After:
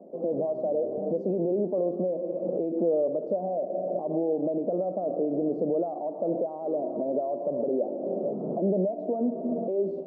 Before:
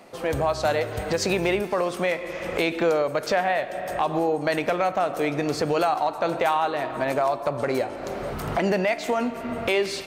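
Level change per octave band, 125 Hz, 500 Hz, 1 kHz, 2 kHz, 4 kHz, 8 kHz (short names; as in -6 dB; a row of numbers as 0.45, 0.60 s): -5.5 dB, -2.0 dB, -12.5 dB, under -40 dB, under -40 dB, under -40 dB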